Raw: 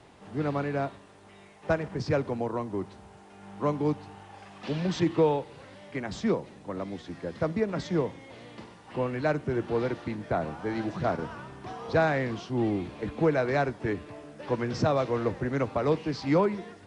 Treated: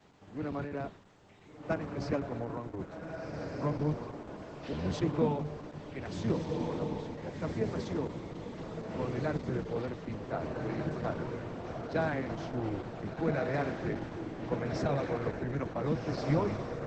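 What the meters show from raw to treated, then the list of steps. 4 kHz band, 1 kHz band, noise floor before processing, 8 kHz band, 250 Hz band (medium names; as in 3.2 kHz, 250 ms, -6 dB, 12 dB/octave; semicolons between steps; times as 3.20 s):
-6.0 dB, -6.5 dB, -52 dBFS, -5.5 dB, -4.5 dB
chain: octave divider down 1 oct, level +4 dB; high-pass 120 Hz 12 dB/octave; echo that smears into a reverb 1496 ms, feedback 44%, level -3.5 dB; trim -7 dB; Opus 10 kbps 48 kHz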